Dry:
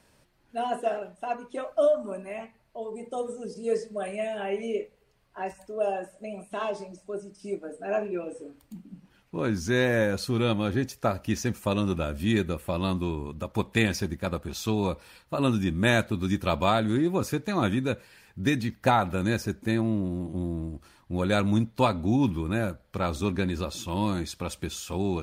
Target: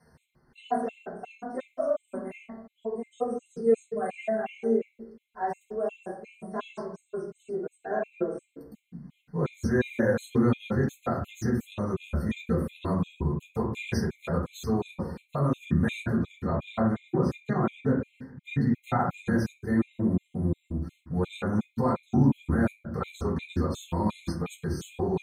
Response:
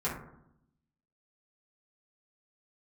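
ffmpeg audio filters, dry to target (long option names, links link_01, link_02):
-filter_complex "[0:a]asettb=1/sr,asplit=3[link_01][link_02][link_03];[link_01]atrim=end=16.194[link_04];[link_02]atrim=start=16.19:end=18.7,asetpts=PTS-STARTPTS,afade=type=in:duration=0.004:curve=qsin,afade=type=out:start_time=2.506:duration=0.004:curve=qsin,lowpass=frequency=2500:poles=1[link_05];[link_03]atrim=start=18.696[link_06];[link_04][link_05]acrossfade=duration=0.004:curve1=hsin:curve2=qsin[link_07];[link_07][link_06]acrossfade=duration=0.004:curve1=qsin:curve2=hsin,alimiter=limit=-18.5dB:level=0:latency=1:release=85[link_08];[1:a]atrim=start_sample=2205[link_09];[link_08][link_09]afir=irnorm=-1:irlink=0,afftfilt=real='re*gt(sin(2*PI*2.8*pts/sr)*(1-2*mod(floor(b*sr/1024/2100),2)),0)':imag='im*gt(sin(2*PI*2.8*pts/sr)*(1-2*mod(floor(b*sr/1024/2100),2)),0)':win_size=1024:overlap=0.75,volume=-5dB"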